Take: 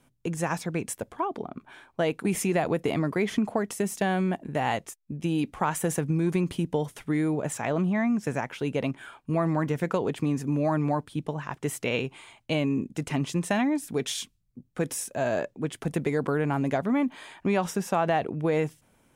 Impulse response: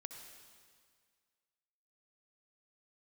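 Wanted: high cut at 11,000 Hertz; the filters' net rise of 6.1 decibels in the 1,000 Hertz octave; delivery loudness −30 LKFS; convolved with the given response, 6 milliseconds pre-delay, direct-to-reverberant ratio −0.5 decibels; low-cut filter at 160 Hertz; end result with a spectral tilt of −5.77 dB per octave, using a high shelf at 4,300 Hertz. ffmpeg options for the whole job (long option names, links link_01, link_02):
-filter_complex "[0:a]highpass=160,lowpass=11000,equalizer=frequency=1000:width_type=o:gain=8.5,highshelf=frequency=4300:gain=-6.5,asplit=2[link_01][link_02];[1:a]atrim=start_sample=2205,adelay=6[link_03];[link_02][link_03]afir=irnorm=-1:irlink=0,volume=4.5dB[link_04];[link_01][link_04]amix=inputs=2:normalize=0,volume=-6.5dB"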